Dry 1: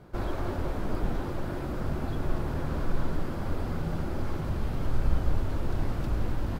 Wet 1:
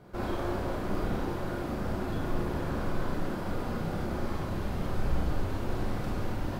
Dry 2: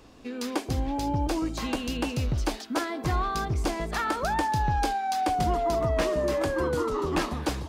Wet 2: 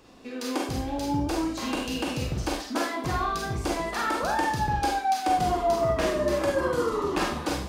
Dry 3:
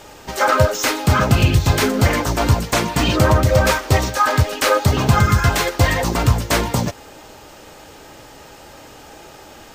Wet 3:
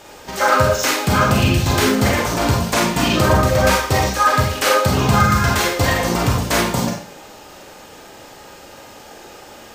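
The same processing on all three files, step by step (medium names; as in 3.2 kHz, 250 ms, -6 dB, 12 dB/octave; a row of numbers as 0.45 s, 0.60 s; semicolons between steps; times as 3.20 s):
bass shelf 85 Hz -7.5 dB; Schroeder reverb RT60 0.43 s, combs from 31 ms, DRR -0.5 dB; trim -1.5 dB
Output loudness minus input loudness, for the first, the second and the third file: -1.0 LU, +1.0 LU, +0.5 LU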